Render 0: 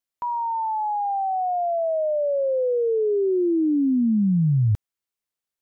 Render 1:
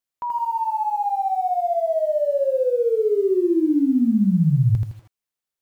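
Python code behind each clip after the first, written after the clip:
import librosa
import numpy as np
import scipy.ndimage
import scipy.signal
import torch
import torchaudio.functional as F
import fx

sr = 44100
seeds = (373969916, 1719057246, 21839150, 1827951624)

y = fx.echo_crushed(x, sr, ms=81, feedback_pct=35, bits=9, wet_db=-3.0)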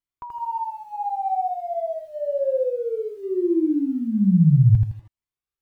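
y = fx.bass_treble(x, sr, bass_db=8, treble_db=-6)
y = fx.comb_cascade(y, sr, direction='rising', hz=0.58)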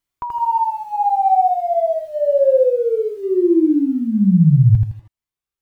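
y = fx.rider(x, sr, range_db=4, speed_s=2.0)
y = y * librosa.db_to_amplitude(6.0)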